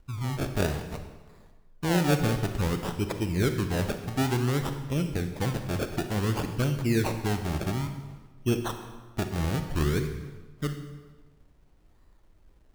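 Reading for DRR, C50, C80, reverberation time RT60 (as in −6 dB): 7.0 dB, 8.0 dB, 9.5 dB, 1.4 s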